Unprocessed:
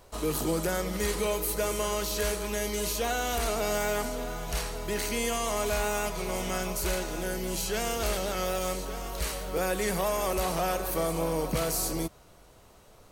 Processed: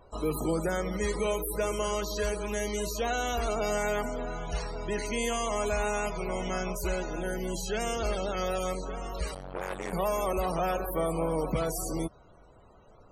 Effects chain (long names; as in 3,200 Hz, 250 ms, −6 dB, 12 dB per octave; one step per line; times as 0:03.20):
spectral peaks only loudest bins 64
0:09.34–0:09.93: saturating transformer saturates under 760 Hz